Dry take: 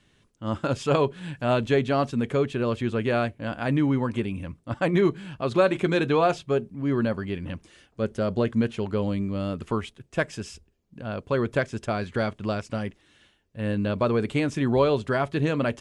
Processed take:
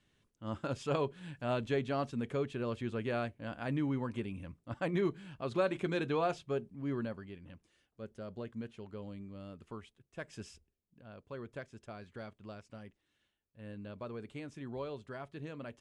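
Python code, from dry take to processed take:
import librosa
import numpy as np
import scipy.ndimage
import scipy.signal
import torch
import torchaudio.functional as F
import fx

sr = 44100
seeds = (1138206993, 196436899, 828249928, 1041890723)

y = fx.gain(x, sr, db=fx.line((6.89, -11.0), (7.4, -19.0), (10.19, -19.0), (10.4, -11.0), (11.02, -20.0)))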